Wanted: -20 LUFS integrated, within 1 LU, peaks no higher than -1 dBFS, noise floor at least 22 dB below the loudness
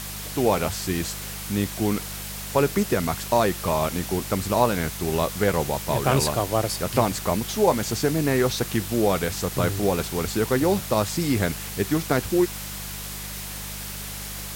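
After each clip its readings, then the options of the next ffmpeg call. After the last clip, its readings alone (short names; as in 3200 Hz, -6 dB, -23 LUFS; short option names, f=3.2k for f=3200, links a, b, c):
hum 50 Hz; harmonics up to 200 Hz; hum level -37 dBFS; noise floor -34 dBFS; noise floor target -47 dBFS; loudness -24.5 LUFS; peak -5.5 dBFS; loudness target -20.0 LUFS
-> -af "bandreject=f=50:t=h:w=4,bandreject=f=100:t=h:w=4,bandreject=f=150:t=h:w=4,bandreject=f=200:t=h:w=4"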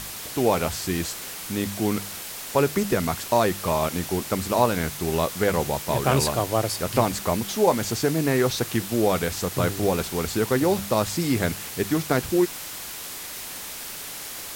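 hum none; noise floor -36 dBFS; noise floor target -47 dBFS
-> -af "afftdn=nr=11:nf=-36"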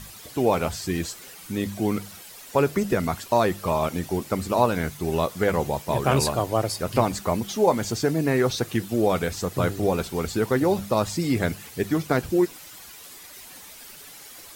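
noise floor -44 dBFS; noise floor target -47 dBFS
-> -af "afftdn=nr=6:nf=-44"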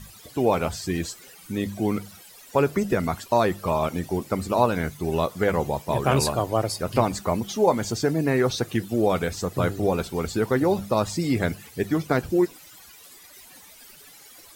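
noise floor -48 dBFS; loudness -24.5 LUFS; peak -6.0 dBFS; loudness target -20.0 LUFS
-> -af "volume=4.5dB"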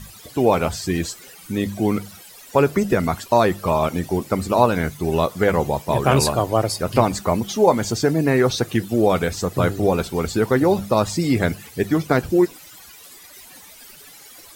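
loudness -20.0 LUFS; peak -1.5 dBFS; noise floor -44 dBFS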